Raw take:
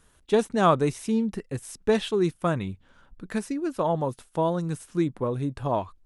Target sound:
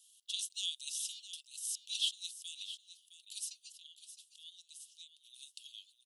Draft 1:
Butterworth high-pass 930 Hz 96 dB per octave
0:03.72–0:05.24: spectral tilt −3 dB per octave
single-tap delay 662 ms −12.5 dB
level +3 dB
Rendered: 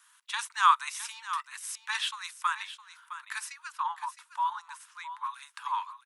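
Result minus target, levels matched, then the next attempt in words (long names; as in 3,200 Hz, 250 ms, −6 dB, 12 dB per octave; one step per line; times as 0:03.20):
4,000 Hz band −7.0 dB
Butterworth high-pass 2,900 Hz 96 dB per octave
0:03.72–0:05.24: spectral tilt −3 dB per octave
single-tap delay 662 ms −12.5 dB
level +3 dB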